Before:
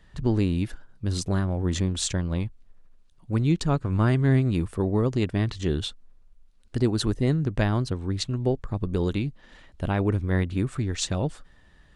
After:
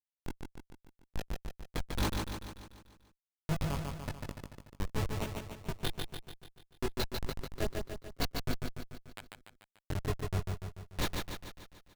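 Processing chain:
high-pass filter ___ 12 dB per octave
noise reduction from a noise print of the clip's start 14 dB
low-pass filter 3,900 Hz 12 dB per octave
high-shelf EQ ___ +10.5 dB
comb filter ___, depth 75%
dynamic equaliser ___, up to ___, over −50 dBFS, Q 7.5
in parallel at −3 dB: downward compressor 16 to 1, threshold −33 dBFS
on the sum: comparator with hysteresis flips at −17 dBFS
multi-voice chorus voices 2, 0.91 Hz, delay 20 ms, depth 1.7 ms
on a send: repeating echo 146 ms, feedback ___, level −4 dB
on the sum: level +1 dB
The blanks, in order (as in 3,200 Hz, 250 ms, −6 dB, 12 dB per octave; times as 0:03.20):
140 Hz, 2,100 Hz, 4.7 ms, 1,200 Hz, −6 dB, 55%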